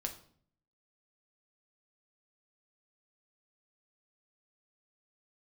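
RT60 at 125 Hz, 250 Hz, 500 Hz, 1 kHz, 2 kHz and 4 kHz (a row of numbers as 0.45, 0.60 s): 0.85, 0.75, 0.60, 0.50, 0.45, 0.45 s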